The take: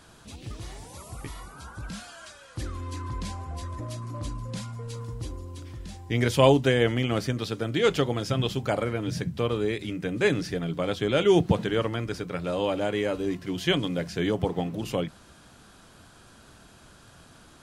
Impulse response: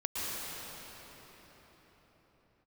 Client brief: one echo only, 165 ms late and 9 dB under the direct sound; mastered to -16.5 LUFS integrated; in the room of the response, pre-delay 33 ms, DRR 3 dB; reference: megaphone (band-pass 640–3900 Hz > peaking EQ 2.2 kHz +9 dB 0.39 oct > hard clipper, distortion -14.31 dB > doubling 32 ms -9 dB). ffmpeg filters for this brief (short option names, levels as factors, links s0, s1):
-filter_complex "[0:a]aecho=1:1:165:0.355,asplit=2[s0][s1];[1:a]atrim=start_sample=2205,adelay=33[s2];[s1][s2]afir=irnorm=-1:irlink=0,volume=0.335[s3];[s0][s3]amix=inputs=2:normalize=0,highpass=640,lowpass=3900,equalizer=f=2200:t=o:w=0.39:g=9,asoftclip=type=hard:threshold=0.106,asplit=2[s4][s5];[s5]adelay=32,volume=0.355[s6];[s4][s6]amix=inputs=2:normalize=0,volume=3.76"